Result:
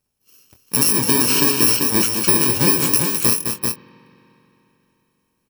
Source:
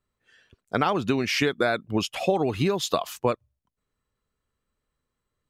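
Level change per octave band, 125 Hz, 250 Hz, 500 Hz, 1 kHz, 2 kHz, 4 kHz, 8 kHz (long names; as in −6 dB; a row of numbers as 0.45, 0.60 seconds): +5.5, +6.0, −0.5, +1.0, +4.0, +9.5, +22.0 decibels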